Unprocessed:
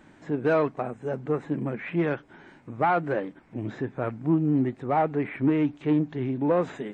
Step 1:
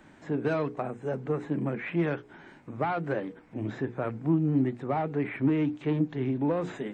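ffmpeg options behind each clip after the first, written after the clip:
-filter_complex "[0:a]bandreject=f=60:t=h:w=6,bandreject=f=120:t=h:w=6,bandreject=f=180:t=h:w=6,bandreject=f=240:t=h:w=6,bandreject=f=300:t=h:w=6,bandreject=f=360:t=h:w=6,bandreject=f=420:t=h:w=6,bandreject=f=480:t=h:w=6,acrossover=split=260|3000[s0][s1][s2];[s1]acompressor=threshold=0.0447:ratio=6[s3];[s0][s3][s2]amix=inputs=3:normalize=0"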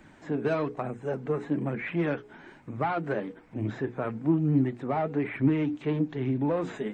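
-af "flanger=delay=0.4:depth=4.4:regen=59:speed=1.1:shape=sinusoidal,volume=1.78"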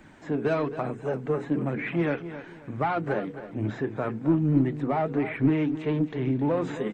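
-filter_complex "[0:a]asplit=2[s0][s1];[s1]aeval=exprs='clip(val(0),-1,0.0631)':c=same,volume=0.266[s2];[s0][s2]amix=inputs=2:normalize=0,aecho=1:1:266|532|798:0.237|0.0688|0.0199"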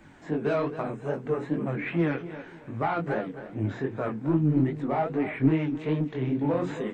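-af "flanger=delay=18:depth=5.8:speed=2.5,volume=1.26"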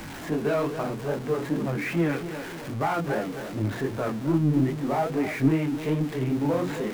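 -af "aeval=exprs='val(0)+0.5*0.02*sgn(val(0))':c=same"

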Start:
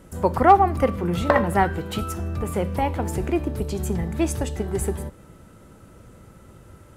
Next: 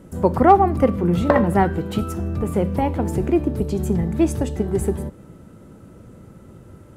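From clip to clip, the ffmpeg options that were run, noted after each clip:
-af "equalizer=f=220:w=0.39:g=9.5,volume=0.708"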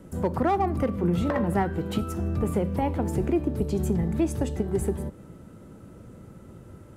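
-filter_complex "[0:a]acrossover=split=450|900[s0][s1][s2];[s1]asoftclip=type=hard:threshold=0.112[s3];[s0][s3][s2]amix=inputs=3:normalize=0,alimiter=limit=0.237:level=0:latency=1:release=288,volume=0.75"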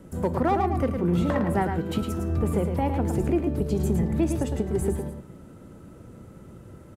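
-af "aecho=1:1:109:0.473"

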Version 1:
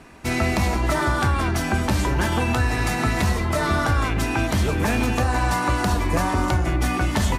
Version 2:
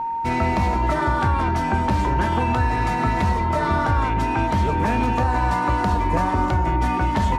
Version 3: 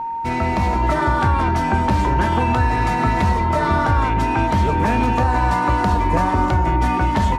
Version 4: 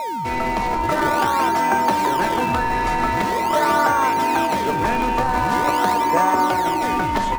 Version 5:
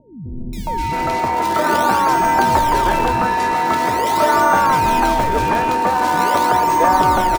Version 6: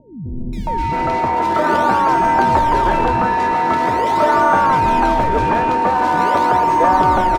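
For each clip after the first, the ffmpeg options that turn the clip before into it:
-af "aeval=exprs='val(0)+0.0794*sin(2*PI*920*n/s)':c=same,aemphasis=mode=reproduction:type=75kf"
-af "dynaudnorm=f=430:g=3:m=1.41"
-filter_complex "[0:a]highpass=360,asplit=2[s0][s1];[s1]acrusher=samples=28:mix=1:aa=0.000001:lfo=1:lforange=44.8:lforate=0.44,volume=0.447[s2];[s0][s2]amix=inputs=2:normalize=0"
-filter_complex "[0:a]acrossover=split=260|2300[s0][s1][s2];[s2]adelay=530[s3];[s1]adelay=670[s4];[s0][s4][s3]amix=inputs=3:normalize=0,volume=1.58"
-filter_complex "[0:a]asplit=2[s0][s1];[s1]asoftclip=type=tanh:threshold=0.112,volume=0.422[s2];[s0][s2]amix=inputs=2:normalize=0,aemphasis=mode=reproduction:type=75kf"

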